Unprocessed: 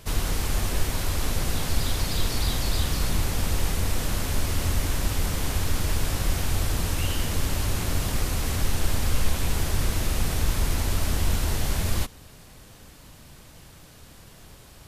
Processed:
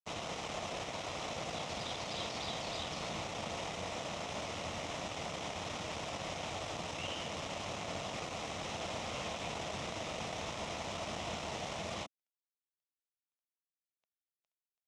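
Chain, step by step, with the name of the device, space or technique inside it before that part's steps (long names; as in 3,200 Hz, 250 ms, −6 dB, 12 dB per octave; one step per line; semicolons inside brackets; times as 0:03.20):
blown loudspeaker (dead-zone distortion −36.5 dBFS; loudspeaker in its box 240–5,800 Hz, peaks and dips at 260 Hz −7 dB, 380 Hz −7 dB, 670 Hz +6 dB, 1,600 Hz −10 dB, 4,500 Hz −9 dB)
level −4 dB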